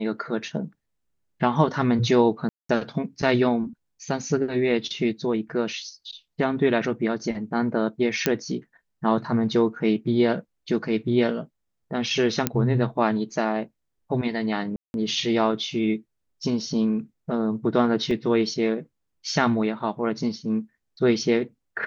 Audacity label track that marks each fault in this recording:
2.490000	2.690000	dropout 204 ms
8.260000	8.260000	pop -5 dBFS
12.470000	12.470000	pop -6 dBFS
14.760000	14.940000	dropout 181 ms
18.110000	18.110000	dropout 2.2 ms

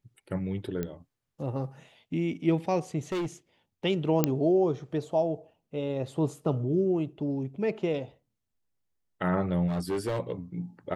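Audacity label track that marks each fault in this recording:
0.830000	0.830000	pop -19 dBFS
3.120000	3.260000	clipped -27.5 dBFS
4.240000	4.240000	pop -8 dBFS
9.670000	10.200000	clipped -25.5 dBFS

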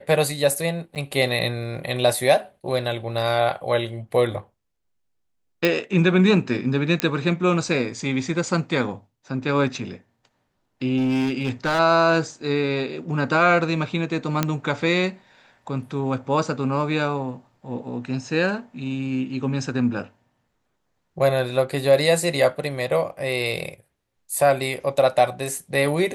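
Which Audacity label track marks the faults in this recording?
0.950000	0.960000	dropout 8.8 ms
5.650000	5.650000	pop
7.000000	7.000000	pop -5 dBFS
10.970000	11.800000	clipped -17.5 dBFS
14.430000	14.430000	pop -6 dBFS

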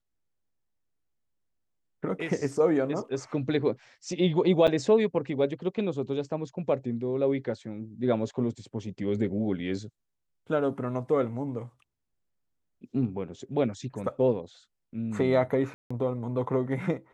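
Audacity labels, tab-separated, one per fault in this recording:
4.670000	4.680000	dropout 7.3 ms
15.740000	15.900000	dropout 165 ms

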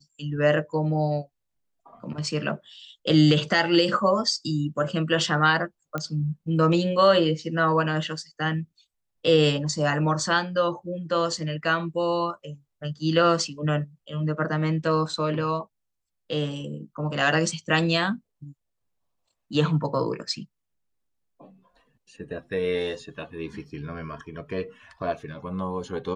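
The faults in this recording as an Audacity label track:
5.980000	5.980000	pop -16 dBFS

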